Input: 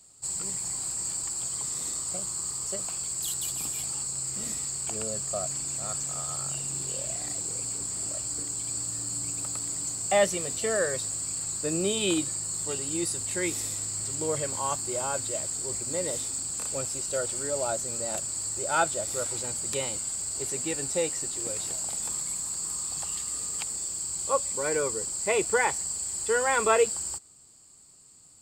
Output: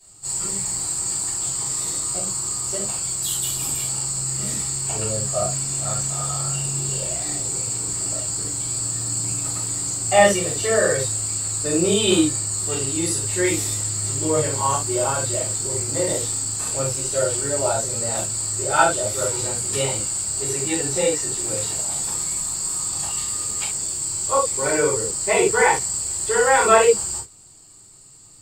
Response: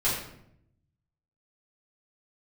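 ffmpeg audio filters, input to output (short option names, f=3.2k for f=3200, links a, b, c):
-filter_complex "[1:a]atrim=start_sample=2205,atrim=end_sample=3528,asetrate=38808,aresample=44100[a];[0:a][a]afir=irnorm=-1:irlink=0,volume=-2.5dB"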